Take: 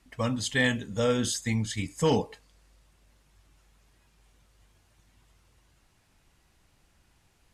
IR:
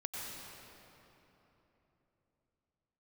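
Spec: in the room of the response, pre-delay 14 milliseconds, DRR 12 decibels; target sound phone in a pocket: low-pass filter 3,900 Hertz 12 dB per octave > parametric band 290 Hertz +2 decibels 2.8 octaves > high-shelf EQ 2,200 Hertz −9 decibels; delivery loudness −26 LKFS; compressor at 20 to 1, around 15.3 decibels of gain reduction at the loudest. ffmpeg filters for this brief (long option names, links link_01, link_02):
-filter_complex "[0:a]acompressor=threshold=-35dB:ratio=20,asplit=2[link_01][link_02];[1:a]atrim=start_sample=2205,adelay=14[link_03];[link_02][link_03]afir=irnorm=-1:irlink=0,volume=-13.5dB[link_04];[link_01][link_04]amix=inputs=2:normalize=0,lowpass=3900,equalizer=frequency=290:width_type=o:width=2.8:gain=2,highshelf=frequency=2200:gain=-9,volume=14.5dB"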